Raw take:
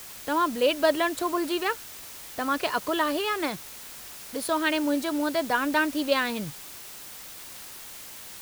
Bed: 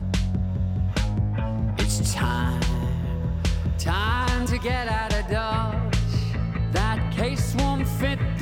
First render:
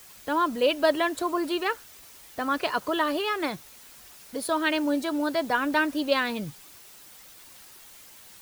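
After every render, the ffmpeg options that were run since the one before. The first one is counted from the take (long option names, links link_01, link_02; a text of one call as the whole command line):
ffmpeg -i in.wav -af "afftdn=noise_reduction=8:noise_floor=-43" out.wav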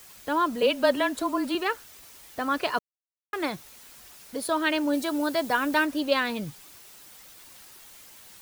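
ffmpeg -i in.wav -filter_complex "[0:a]asettb=1/sr,asplit=3[link_01][link_02][link_03];[link_01]atrim=end=0.624[link_04];[link_02]atrim=start=0.62:end=1.55,asetpts=PTS-STARTPTS,afade=type=in:duration=0.004:curve=qsin,afade=type=out:start_time=0.926:duration=0.004:curve=qsin,afreqshift=-28[link_05];[link_03]atrim=start=1.546[link_06];[link_04][link_05]acrossfade=duration=0.004:curve1=hsin:curve2=qsin[link_07];[link_07][link_06]acrossfade=duration=0.004:curve1=qsin:curve2=hsin,asettb=1/sr,asplit=3[link_08][link_09][link_10];[link_08]atrim=end=4.934[link_11];[link_09]atrim=start=4.93:end=5.85,asetpts=PTS-STARTPTS,afade=type=in:duration=0.004:curve=qsin,afade=type=out:start_time=0.916:duration=0.004:curve=qsin,highshelf=frequency=5700:gain=6[link_12];[link_10]atrim=start=5.846[link_13];[link_11][link_12]acrossfade=duration=0.004:curve1=hsin:curve2=qsin[link_14];[link_14][link_13]acrossfade=duration=0.004:curve1=qsin:curve2=hsin,asplit=3[link_15][link_16][link_17];[link_15]atrim=end=2.79,asetpts=PTS-STARTPTS,afade=type=out:start_time=2.786:duration=0.004:curve=hsin[link_18];[link_16]atrim=start=2.79:end=3.33,asetpts=PTS-STARTPTS,volume=0[link_19];[link_17]atrim=start=3.33,asetpts=PTS-STARTPTS,afade=type=in:duration=0.004:curve=hsin[link_20];[link_18][link_19][link_20]concat=n=3:v=0:a=1" out.wav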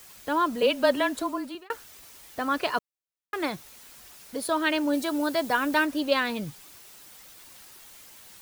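ffmpeg -i in.wav -filter_complex "[0:a]asplit=2[link_01][link_02];[link_01]atrim=end=1.7,asetpts=PTS-STARTPTS,afade=type=out:start_time=1.16:duration=0.54[link_03];[link_02]atrim=start=1.7,asetpts=PTS-STARTPTS,afade=type=in:duration=0.004:curve=hsin[link_04];[link_03][link_04]concat=n=2:v=0:a=1" out.wav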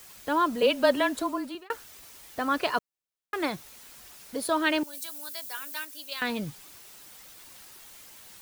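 ffmpeg -i in.wav -filter_complex "[0:a]asettb=1/sr,asplit=3[link_01][link_02][link_03];[link_01]atrim=end=4.834[link_04];[link_02]atrim=start=4.83:end=6.22,asetpts=PTS-STARTPTS,afade=type=in:duration=0.004:curve=qsin,afade=type=out:start_time=1.386:duration=0.004:curve=qsin,aderivative[link_05];[link_03]atrim=start=6.216[link_06];[link_04][link_05]acrossfade=duration=0.004:curve1=hsin:curve2=qsin[link_07];[link_07][link_06]acrossfade=duration=0.004:curve1=qsin:curve2=hsin" out.wav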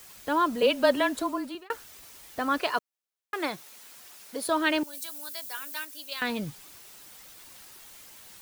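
ffmpeg -i in.wav -filter_complex "[0:a]asettb=1/sr,asplit=3[link_01][link_02][link_03];[link_01]atrim=end=2.604[link_04];[link_02]atrim=start=2.6:end=4.47,asetpts=PTS-STARTPTS,afade=type=in:duration=0.004:curve=qsin,afade=type=out:start_time=1.866:duration=0.004:curve=qsin,highpass=frequency=310:poles=1[link_05];[link_03]atrim=start=4.466[link_06];[link_04][link_05]acrossfade=duration=0.004:curve1=hsin:curve2=qsin[link_07];[link_07][link_06]acrossfade=duration=0.004:curve1=qsin:curve2=hsin" out.wav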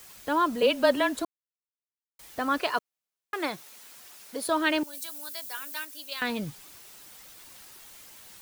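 ffmpeg -i in.wav -filter_complex "[0:a]asplit=3[link_01][link_02][link_03];[link_01]atrim=end=1.25,asetpts=PTS-STARTPTS,afade=type=out:start_time=1.246:duration=0.004:curve=hsin[link_04];[link_02]atrim=start=1.25:end=2.19,asetpts=PTS-STARTPTS,volume=0[link_05];[link_03]atrim=start=2.19,asetpts=PTS-STARTPTS,afade=type=in:duration=0.004:curve=hsin[link_06];[link_04][link_05][link_06]concat=n=3:v=0:a=1" out.wav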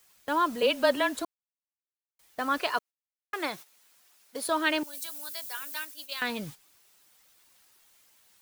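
ffmpeg -i in.wav -af "lowshelf=frequency=480:gain=-5,agate=range=-13dB:threshold=-43dB:ratio=16:detection=peak" out.wav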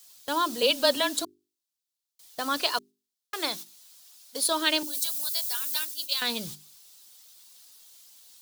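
ffmpeg -i in.wav -af "highshelf=frequency=2900:width_type=q:width=1.5:gain=9,bandreject=frequency=50:width_type=h:width=6,bandreject=frequency=100:width_type=h:width=6,bandreject=frequency=150:width_type=h:width=6,bandreject=frequency=200:width_type=h:width=6,bandreject=frequency=250:width_type=h:width=6,bandreject=frequency=300:width_type=h:width=6,bandreject=frequency=350:width_type=h:width=6,bandreject=frequency=400:width_type=h:width=6" out.wav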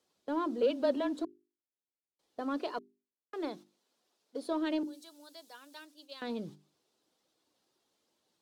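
ffmpeg -i in.wav -filter_complex "[0:a]bandpass=frequency=330:width_type=q:width=1.3:csg=0,asplit=2[link_01][link_02];[link_02]asoftclip=type=hard:threshold=-35dB,volume=-11dB[link_03];[link_01][link_03]amix=inputs=2:normalize=0" out.wav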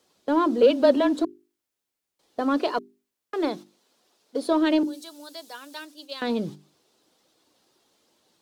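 ffmpeg -i in.wav -af "volume=11.5dB" out.wav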